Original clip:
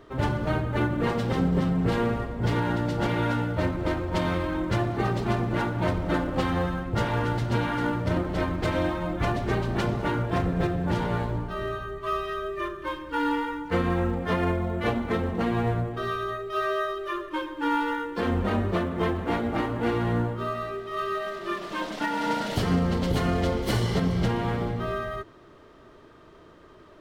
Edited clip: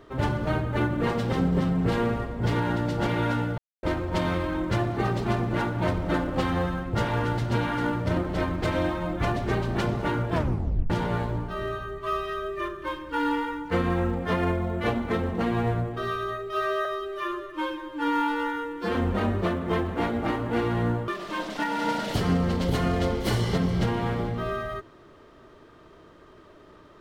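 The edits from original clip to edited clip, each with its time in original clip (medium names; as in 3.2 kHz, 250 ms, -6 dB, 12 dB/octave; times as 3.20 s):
3.58–3.83 s: mute
10.33 s: tape stop 0.57 s
16.85–18.25 s: stretch 1.5×
20.38–21.50 s: delete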